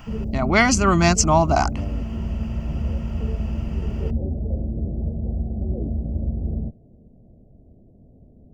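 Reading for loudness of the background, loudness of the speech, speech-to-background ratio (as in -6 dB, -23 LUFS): -27.5 LUFS, -18.5 LUFS, 9.0 dB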